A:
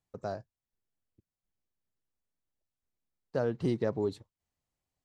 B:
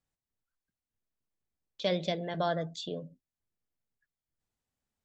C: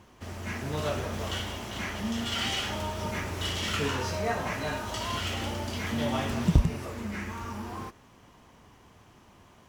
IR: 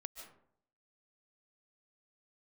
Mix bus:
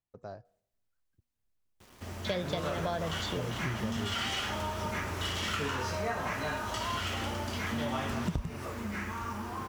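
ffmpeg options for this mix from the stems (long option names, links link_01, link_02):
-filter_complex "[0:a]asubboost=boost=10:cutoff=110,lowpass=5300,bandreject=frequency=241.7:width_type=h:width=4,bandreject=frequency=483.4:width_type=h:width=4,bandreject=frequency=725.1:width_type=h:width=4,volume=-7.5dB,asplit=2[link_01][link_02];[link_02]volume=-22.5dB[link_03];[1:a]adelay=450,volume=2dB[link_04];[2:a]adynamicequalizer=threshold=0.00562:dfrequency=1300:dqfactor=1.3:tfrequency=1300:tqfactor=1.3:attack=5:release=100:ratio=0.375:range=2.5:mode=boostabove:tftype=bell,acrusher=bits=8:mix=0:aa=0.000001,adelay=1800,volume=-2dB[link_05];[3:a]atrim=start_sample=2205[link_06];[link_03][link_06]afir=irnorm=-1:irlink=0[link_07];[link_01][link_04][link_05][link_07]amix=inputs=4:normalize=0,acompressor=threshold=-29dB:ratio=6"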